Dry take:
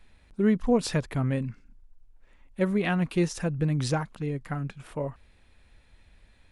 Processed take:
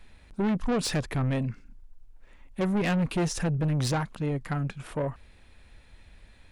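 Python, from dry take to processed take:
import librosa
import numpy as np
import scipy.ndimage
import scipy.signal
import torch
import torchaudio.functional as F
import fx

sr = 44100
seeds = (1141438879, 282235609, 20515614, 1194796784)

y = fx.low_shelf(x, sr, hz=200.0, db=4.5, at=(2.75, 3.57))
y = 10.0 ** (-27.0 / 20.0) * np.tanh(y / 10.0 ** (-27.0 / 20.0))
y = y * 10.0 ** (4.5 / 20.0)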